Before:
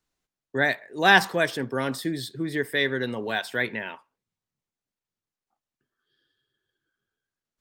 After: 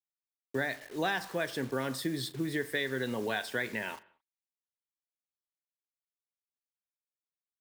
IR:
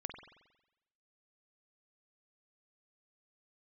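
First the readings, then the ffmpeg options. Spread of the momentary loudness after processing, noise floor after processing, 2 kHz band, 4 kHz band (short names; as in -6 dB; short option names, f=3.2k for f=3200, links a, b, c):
4 LU, under -85 dBFS, -11.0 dB, -9.5 dB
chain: -filter_complex "[0:a]acompressor=threshold=-26dB:ratio=12,acrusher=bits=7:mix=0:aa=0.000001,asplit=2[a][b];[1:a]atrim=start_sample=2205,afade=t=out:st=0.26:d=0.01,atrim=end_sample=11907,adelay=38[c];[b][c]afir=irnorm=-1:irlink=0,volume=-14.5dB[d];[a][d]amix=inputs=2:normalize=0,volume=-2dB"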